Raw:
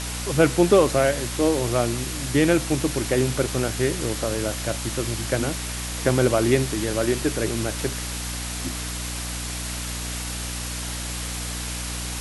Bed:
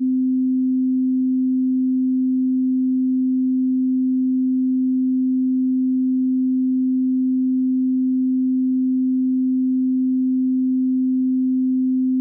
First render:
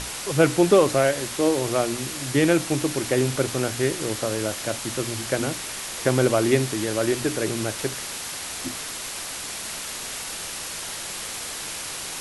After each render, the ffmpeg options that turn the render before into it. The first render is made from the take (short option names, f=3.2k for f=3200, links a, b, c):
-af "bandreject=f=60:t=h:w=6,bandreject=f=120:t=h:w=6,bandreject=f=180:t=h:w=6,bandreject=f=240:t=h:w=6,bandreject=f=300:t=h:w=6"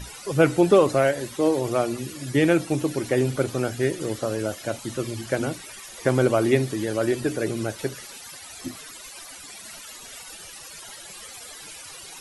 -af "afftdn=nr=16:nf=-33"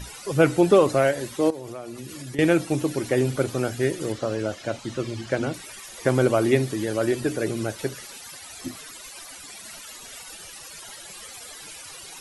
-filter_complex "[0:a]asettb=1/sr,asplit=3[a][b][c];[a]atrim=end=1.504[d];[b]atrim=start=1.5:end=2.39,asetpts=PTS-STARTPTS,afade=t=in:d=0.004:c=qsin,afade=t=out:st=0.886:d=0.004:c=qsin,acompressor=threshold=-33dB:ratio=5:attack=3.2:release=140:knee=1:detection=peak[e];[c]atrim=start=2.386[f];[d][e]acrossfade=d=0.004:c1=hsin:c2=qsin[g];[g][f]acrossfade=d=0.004:c1=qsin:c2=hsin,asettb=1/sr,asplit=3[h][i][j];[h]atrim=end=4.124[k];[i]atrim=start=4.12:end=5.54,asetpts=PTS-STARTPTS,afade=t=in:d=0.004:c=qsin,afade=t=out:st=1.416:d=0.004:c=qsin,lowpass=6k[l];[j]atrim=start=5.536[m];[k][l]acrossfade=d=0.004:c1=hsin:c2=qsin[n];[n][m]acrossfade=d=0.004:c1=qsin:c2=hsin"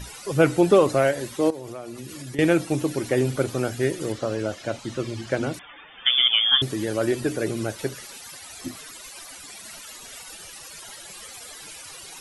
-filter_complex "[0:a]asettb=1/sr,asplit=3[a][b][c];[a]atrim=end=5.594[d];[b]atrim=start=5.59:end=6.62,asetpts=PTS-STARTPTS,afade=t=in:d=0.004:c=qsin,afade=t=out:st=1.026:d=0.004:c=qsin,lowpass=f=3.1k:t=q:w=0.5098,lowpass=f=3.1k:t=q:w=0.6013,lowpass=f=3.1k:t=q:w=0.9,lowpass=f=3.1k:t=q:w=2.563,afreqshift=-3600[e];[c]atrim=start=6.616[f];[d][e]acrossfade=d=0.004:c1=hsin:c2=qsin[g];[g][f]acrossfade=d=0.004:c1=qsin:c2=hsin"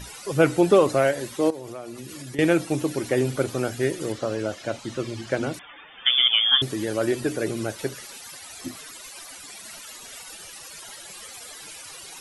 -af "lowshelf=f=130:g=-4"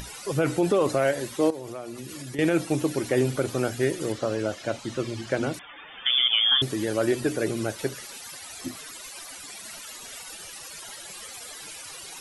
-af "alimiter=limit=-12.5dB:level=0:latency=1:release=41,acompressor=mode=upward:threshold=-38dB:ratio=2.5"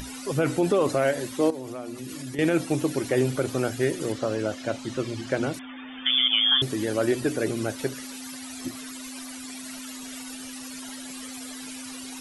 -filter_complex "[1:a]volume=-23dB[a];[0:a][a]amix=inputs=2:normalize=0"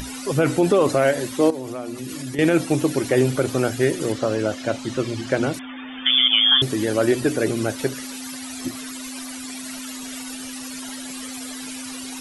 -af "volume=5dB"